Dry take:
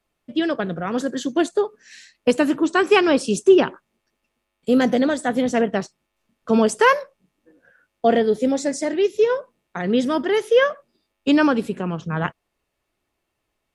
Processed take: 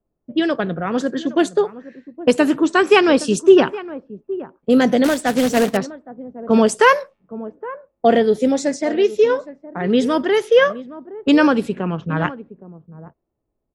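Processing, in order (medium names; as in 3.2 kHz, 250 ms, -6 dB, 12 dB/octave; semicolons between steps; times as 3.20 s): echo from a far wall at 140 m, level -16 dB; 5.04–5.77 s: companded quantiser 4-bit; level-controlled noise filter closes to 500 Hz, open at -16.5 dBFS; trim +3 dB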